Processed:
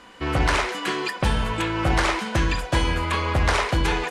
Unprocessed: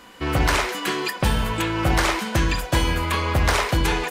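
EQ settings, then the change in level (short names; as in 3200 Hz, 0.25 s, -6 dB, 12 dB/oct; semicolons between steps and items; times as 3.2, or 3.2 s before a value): LPF 11000 Hz 24 dB/oct; bell 160 Hz -2 dB 2.7 oct; high shelf 5400 Hz -6.5 dB; 0.0 dB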